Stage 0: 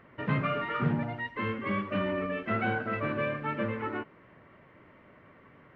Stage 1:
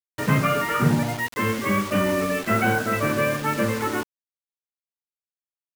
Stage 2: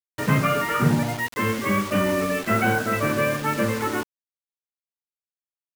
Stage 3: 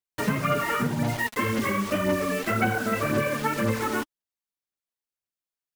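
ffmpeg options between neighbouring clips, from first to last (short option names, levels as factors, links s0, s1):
-af "acrusher=bits=6:mix=0:aa=0.000001,volume=2.66"
-af anull
-af "acompressor=threshold=0.0708:ratio=6,aphaser=in_gain=1:out_gain=1:delay=4.8:decay=0.45:speed=1.9:type=sinusoidal"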